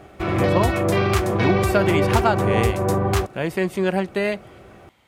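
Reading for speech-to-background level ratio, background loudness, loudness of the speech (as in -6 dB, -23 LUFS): -3.0 dB, -21.0 LUFS, -24.0 LUFS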